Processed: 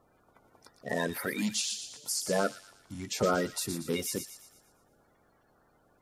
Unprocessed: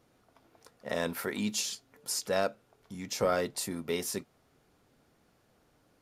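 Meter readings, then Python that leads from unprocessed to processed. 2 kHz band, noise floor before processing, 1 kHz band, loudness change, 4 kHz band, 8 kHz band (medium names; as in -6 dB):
+2.0 dB, -69 dBFS, +1.0 dB, +1.0 dB, +1.5 dB, +2.0 dB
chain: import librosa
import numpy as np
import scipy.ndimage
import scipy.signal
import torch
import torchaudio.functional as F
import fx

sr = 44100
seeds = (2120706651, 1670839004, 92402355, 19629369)

y = fx.spec_quant(x, sr, step_db=30)
y = fx.echo_wet_highpass(y, sr, ms=117, feedback_pct=47, hz=2600.0, wet_db=-7)
y = y * librosa.db_to_amplitude(1.5)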